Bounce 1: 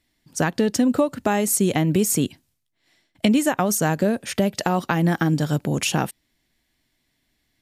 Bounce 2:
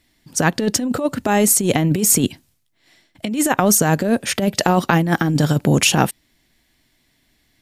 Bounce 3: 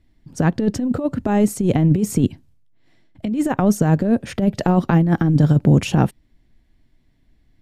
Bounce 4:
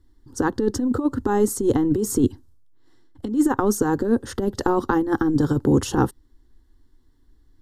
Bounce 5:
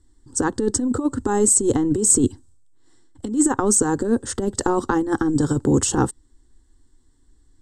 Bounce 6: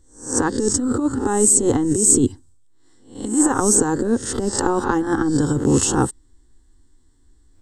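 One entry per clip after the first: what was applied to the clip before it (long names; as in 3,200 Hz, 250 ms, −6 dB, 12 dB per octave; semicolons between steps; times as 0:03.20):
compressor whose output falls as the input rises −21 dBFS, ratio −0.5; level +6 dB
spectral tilt −3.5 dB per octave; level −6 dB
phaser with its sweep stopped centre 640 Hz, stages 6; level +3 dB
low-pass with resonance 8,000 Hz, resonance Q 11
peak hold with a rise ahead of every peak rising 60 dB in 0.42 s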